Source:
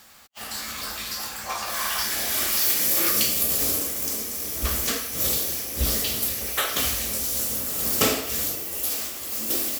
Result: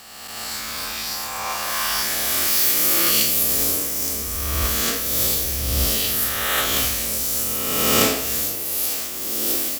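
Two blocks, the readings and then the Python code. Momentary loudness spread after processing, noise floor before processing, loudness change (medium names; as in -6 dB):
10 LU, -36 dBFS, +4.0 dB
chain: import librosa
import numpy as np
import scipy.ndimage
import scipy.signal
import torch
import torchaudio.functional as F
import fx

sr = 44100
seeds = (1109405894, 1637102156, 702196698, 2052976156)

y = fx.spec_swells(x, sr, rise_s=1.74)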